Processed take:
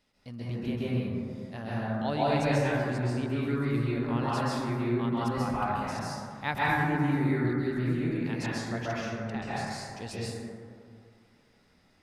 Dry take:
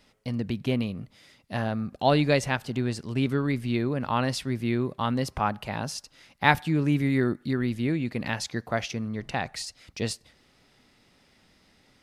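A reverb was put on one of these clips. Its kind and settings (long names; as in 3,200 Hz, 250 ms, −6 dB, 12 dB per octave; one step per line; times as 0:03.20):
dense smooth reverb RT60 2.2 s, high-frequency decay 0.3×, pre-delay 120 ms, DRR −8.5 dB
level −12 dB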